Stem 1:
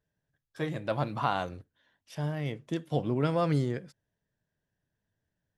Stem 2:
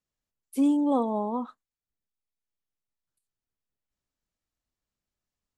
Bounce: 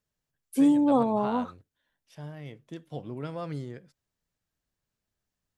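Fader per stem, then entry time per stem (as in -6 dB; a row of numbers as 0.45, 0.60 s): -8.5, +2.0 dB; 0.00, 0.00 s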